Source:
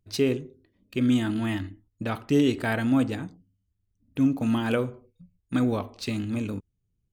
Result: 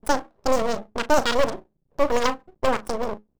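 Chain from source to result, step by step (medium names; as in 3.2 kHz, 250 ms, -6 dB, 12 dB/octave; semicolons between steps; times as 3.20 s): local Wiener filter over 41 samples; hum notches 50/100/150 Hz; on a send: delay 79 ms -13 dB; on the sum: wide varispeed 2.1×; half-wave rectifier; trim +7.5 dB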